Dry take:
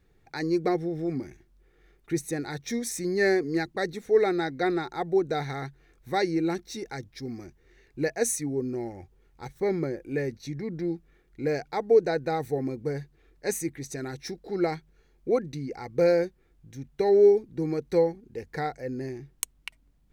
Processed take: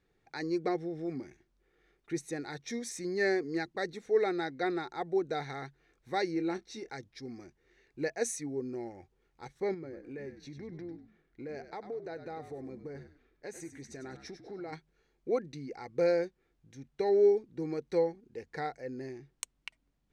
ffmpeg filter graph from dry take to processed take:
-filter_complex "[0:a]asettb=1/sr,asplit=3[a][b][c];[a]atrim=end=6.324[d];[b]atrim=start=6.32:end=6.9,asetpts=PTS-STARTPTS,afade=t=in:d=0.004:c=qsin,afade=t=out:st=0.576:d=0.004:c=qsin,highshelf=f=6.5k:g=-6,asplit=2[e][f];[f]adelay=27,volume=-11.5dB[g];[e][g]amix=inputs=2:normalize=0,atrim=end_sample=25578[h];[c]atrim=start=6.896[i];[d][h]acrossfade=d=0.004:c1=hsin:c2=qsin[j];[j][i]acrossfade=d=0.004:c1=qsin:c2=hsin,asettb=1/sr,asplit=3[k][l][m];[k]atrim=end=9.744[n];[l]atrim=start=9.74:end=14.73,asetpts=PTS-STARTPTS,afade=t=in:d=0.004:c=qsin,afade=t=out:st=4.986:d=0.004:c=qsin,highshelf=f=3.6k:g=-7,acompressor=threshold=-33dB:ratio=4:attack=3.2:release=140:knee=1:detection=peak,asplit=4[o][p][q][r];[p]adelay=98,afreqshift=-59,volume=-10dB[s];[q]adelay=196,afreqshift=-118,volume=-20.2dB[t];[r]adelay=294,afreqshift=-177,volume=-30.3dB[u];[o][s][t][u]amix=inputs=4:normalize=0,atrim=end_sample=220059[v];[m]atrim=start=14.726[w];[n][v]acrossfade=d=0.004:c1=hsin:c2=qsin[x];[x][w]acrossfade=d=0.004:c1=qsin:c2=hsin,lowpass=7.6k,lowshelf=f=140:g=-10.5,volume=-5dB"

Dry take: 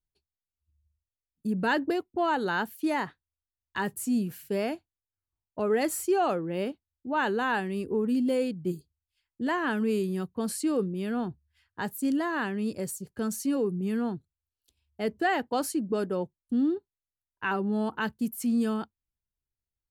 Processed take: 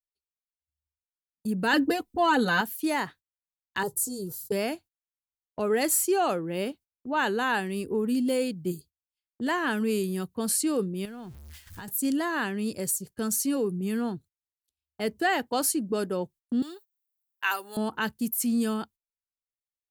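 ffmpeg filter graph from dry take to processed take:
-filter_complex "[0:a]asettb=1/sr,asplit=3[a][b][c];[a]atrim=end=1.734[d];[b]atrim=start=1.73:end=2.61,asetpts=PTS-STARTPTS,afade=t=in:d=0.004:c=qsin,afade=t=out:st=0.876:d=0.004:c=qsin,lowshelf=f=170:g=10.5,aecho=1:1:4:0.93,atrim=end_sample=38808[e];[c]atrim=start=2.606[f];[d][e]acrossfade=d=0.004:c1=hsin:c2=qsin[g];[g][f]acrossfade=d=0.004:c1=qsin:c2=hsin,asettb=1/sr,asplit=3[h][i][j];[h]atrim=end=3.834[k];[i]atrim=start=3.83:end=4.52,asetpts=PTS-STARTPTS,afade=t=in:d=0.004:c=qsin,afade=t=out:st=0.686:d=0.004:c=qsin,asuperstop=centerf=2200:order=4:qfactor=0.59,highshelf=f=9k:g=-5.5,aecho=1:1:2.2:0.86,atrim=end_sample=30429[l];[j]atrim=start=4.516[m];[k][l]acrossfade=d=0.004:c1=hsin:c2=qsin[n];[n][m]acrossfade=d=0.004:c1=qsin:c2=hsin,asettb=1/sr,asplit=3[o][p][q];[o]atrim=end=11.054[r];[p]atrim=start=11.05:end=11.88,asetpts=PTS-STARTPTS,afade=t=in:d=0.004:c=qsin,afade=t=out:st=0.826:d=0.004:c=qsin,aeval=exprs='val(0)+0.5*0.00473*sgn(val(0))':c=same,asubboost=boost=11:cutoff=180,acompressor=threshold=-38dB:ratio=10:attack=3.2:release=140:knee=1:detection=peak[s];[q]atrim=start=11.876[t];[r][s]acrossfade=d=0.004:c1=hsin:c2=qsin[u];[u][t]acrossfade=d=0.004:c1=qsin:c2=hsin,asettb=1/sr,asplit=3[v][w][x];[v]atrim=end=16.624[y];[w]atrim=start=16.62:end=17.77,asetpts=PTS-STARTPTS,afade=t=in:d=0.004:c=qsin,afade=t=out:st=1.146:d=0.004:c=qsin,highpass=600,aemphasis=mode=production:type=riaa[z];[x]atrim=start=17.766[aa];[y][z]acrossfade=d=0.004:c1=hsin:c2=qsin[ab];[ab][aa]acrossfade=d=0.004:c1=qsin:c2=hsin,highshelf=f=7.9k:g=4.5,agate=range=-21dB:threshold=-48dB:ratio=16:detection=peak,highshelf=f=2.9k:g=7.5"

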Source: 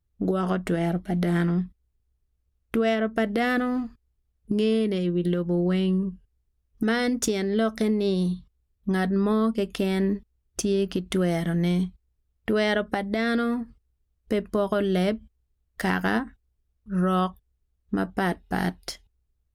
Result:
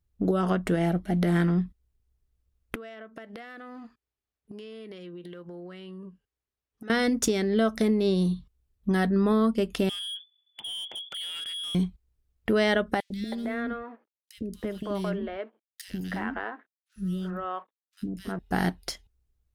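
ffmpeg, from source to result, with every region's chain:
-filter_complex "[0:a]asettb=1/sr,asplit=3[a][b][c];[a]atrim=end=2.754[d];[b]atrim=start=2.75:end=6.9,asetpts=PTS-STARTPTS,afade=t=in:d=0.004:c=qsin,afade=t=out:st=4.146:d=0.004:c=qsin,highpass=f=800:p=1,acompressor=threshold=-38dB:ratio=10:attack=3.2:release=140:knee=1:detection=peak,aemphasis=mode=reproduction:type=cd[e];[c]atrim=start=6.896[f];[d][e]acrossfade=d=0.004:c1=hsin:c2=qsin[g];[g][f]acrossfade=d=0.004:c1=qsin:c2=hsin,asettb=1/sr,asplit=3[h][i][j];[h]atrim=end=9.894[k];[i]atrim=start=9.89:end=11.75,asetpts=PTS-STARTPTS,afade=t=in:d=0.004:c=qsin,afade=t=out:st=1.856:d=0.004:c=qsin,acompressor=threshold=-33dB:ratio=2.5:attack=3.2:release=140:knee=1:detection=peak,lowpass=f=3k:t=q:w=0.5098,lowpass=f=3k:t=q:w=0.6013,lowpass=f=3k:t=q:w=0.9,lowpass=f=3k:t=q:w=2.563,afreqshift=-3500,asoftclip=type=hard:threshold=-33dB[l];[j]atrim=start=11.746[m];[k][l]acrossfade=d=0.004:c1=hsin:c2=qsin[n];[n][m]acrossfade=d=0.004:c1=qsin:c2=hsin,asettb=1/sr,asplit=3[o][p][q];[o]atrim=end=13.004[r];[p]atrim=start=13:end=18.39,asetpts=PTS-STARTPTS,afade=t=in:d=0.004:c=qsin,afade=t=out:st=5.386:d=0.004:c=qsin,acompressor=threshold=-26dB:ratio=4:attack=3.2:release=140:knee=1:detection=peak,aeval=exprs='sgn(val(0))*max(abs(val(0))-0.00188,0)':c=same,acrossover=split=370|2800[s][t][u];[s]adelay=100[v];[t]adelay=320[w];[v][w][u]amix=inputs=3:normalize=0,atrim=end_sample=237699[x];[q]atrim=start=18.386[y];[r][x]acrossfade=d=0.004:c1=hsin:c2=qsin[z];[z][y]acrossfade=d=0.004:c1=qsin:c2=hsin"

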